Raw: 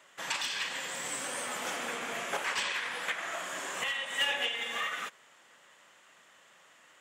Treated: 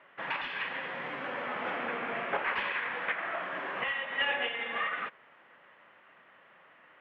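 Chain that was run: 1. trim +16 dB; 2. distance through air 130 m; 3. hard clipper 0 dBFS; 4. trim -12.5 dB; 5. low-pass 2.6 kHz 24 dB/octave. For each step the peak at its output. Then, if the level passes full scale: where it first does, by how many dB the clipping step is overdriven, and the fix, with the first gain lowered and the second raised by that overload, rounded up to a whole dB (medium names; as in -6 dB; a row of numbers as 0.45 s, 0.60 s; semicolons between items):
-1.5 dBFS, -5.5 dBFS, -5.5 dBFS, -18.0 dBFS, -18.5 dBFS; nothing clips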